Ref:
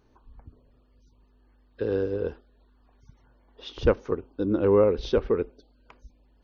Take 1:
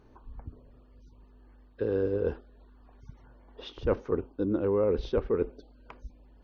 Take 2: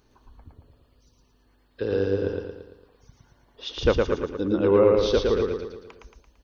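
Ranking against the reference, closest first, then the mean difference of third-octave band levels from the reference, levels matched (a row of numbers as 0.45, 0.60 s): 1, 2; 2.5, 5.0 dB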